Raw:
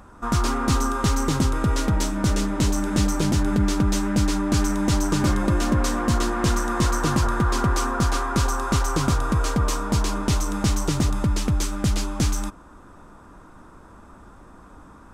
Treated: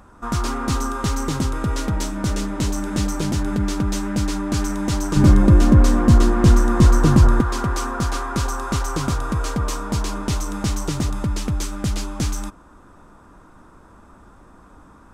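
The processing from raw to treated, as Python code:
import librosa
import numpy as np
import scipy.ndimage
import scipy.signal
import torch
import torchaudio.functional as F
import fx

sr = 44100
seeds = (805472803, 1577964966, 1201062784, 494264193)

y = fx.low_shelf(x, sr, hz=410.0, db=12.0, at=(5.16, 7.41))
y = F.gain(torch.from_numpy(y), -1.0).numpy()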